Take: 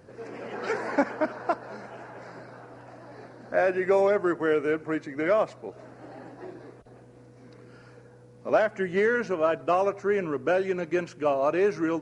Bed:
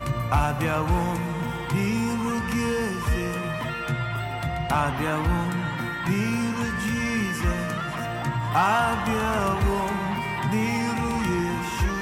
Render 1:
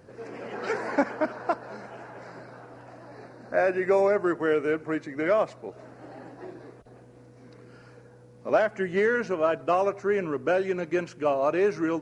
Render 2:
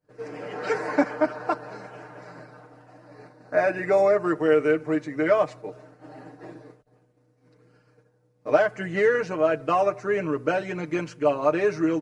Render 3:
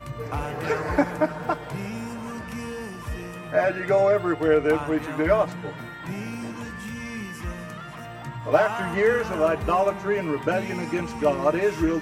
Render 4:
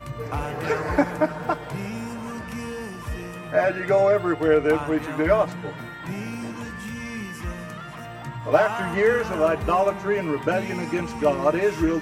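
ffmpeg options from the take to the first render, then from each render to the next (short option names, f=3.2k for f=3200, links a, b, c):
-filter_complex "[0:a]asettb=1/sr,asplit=3[a][b][c];[a]atrim=end=3.074[d];[b]atrim=start=3.07:end=4.24,asetpts=PTS-STARTPTS,afade=t=in:d=0.004:c=qsin,afade=t=out:st=1.166:d=0.004:c=qsin,asuperstop=centerf=3200:order=8:qfactor=5.3[e];[c]atrim=start=4.236[f];[d][e]acrossfade=d=0.004:c1=hsin:c2=qsin[g];[g][f]acrossfade=d=0.004:c1=qsin:c2=hsin"
-af "agate=range=-33dB:threshold=-40dB:ratio=3:detection=peak,aecho=1:1:6.6:0.8"
-filter_complex "[1:a]volume=-8.5dB[a];[0:a][a]amix=inputs=2:normalize=0"
-af "volume=1dB"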